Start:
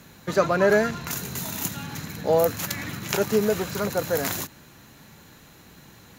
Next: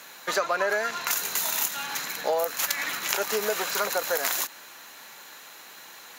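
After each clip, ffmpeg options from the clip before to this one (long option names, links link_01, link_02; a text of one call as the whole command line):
ffmpeg -i in.wav -filter_complex "[0:a]asplit=2[link_01][link_02];[link_02]alimiter=limit=-14.5dB:level=0:latency=1:release=287,volume=2.5dB[link_03];[link_01][link_03]amix=inputs=2:normalize=0,highpass=730,acompressor=threshold=-22dB:ratio=5" out.wav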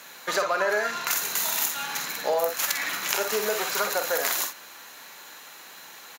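ffmpeg -i in.wav -af "aecho=1:1:48|60:0.376|0.299" out.wav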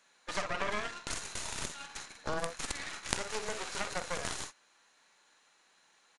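ffmpeg -i in.wav -af "agate=range=-8dB:threshold=-31dB:ratio=16:detection=peak,aeval=exprs='0.75*(cos(1*acos(clip(val(0)/0.75,-1,1)))-cos(1*PI/2))+0.376*(cos(3*acos(clip(val(0)/0.75,-1,1)))-cos(3*PI/2))+0.0596*(cos(4*acos(clip(val(0)/0.75,-1,1)))-cos(4*PI/2))+0.0422*(cos(5*acos(clip(val(0)/0.75,-1,1)))-cos(5*PI/2))+0.0335*(cos(8*acos(clip(val(0)/0.75,-1,1)))-cos(8*PI/2))':channel_layout=same,aresample=22050,aresample=44100" out.wav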